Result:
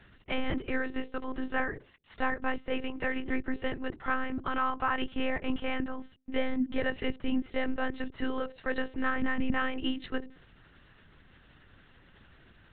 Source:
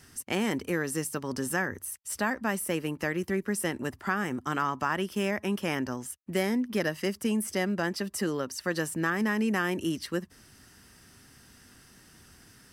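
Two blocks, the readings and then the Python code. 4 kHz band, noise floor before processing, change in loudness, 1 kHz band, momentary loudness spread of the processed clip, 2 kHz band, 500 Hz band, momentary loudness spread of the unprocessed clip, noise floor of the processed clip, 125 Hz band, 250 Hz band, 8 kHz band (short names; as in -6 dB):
-2.5 dB, -57 dBFS, -3.0 dB, -1.0 dB, 6 LU, -2.0 dB, -4.0 dB, 5 LU, -59 dBFS, -9.5 dB, -3.0 dB, under -40 dB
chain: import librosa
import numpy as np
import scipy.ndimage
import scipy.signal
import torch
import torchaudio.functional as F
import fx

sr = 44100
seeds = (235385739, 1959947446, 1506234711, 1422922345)

y = fx.hum_notches(x, sr, base_hz=60, count=9)
y = fx.lpc_monotone(y, sr, seeds[0], pitch_hz=260.0, order=10)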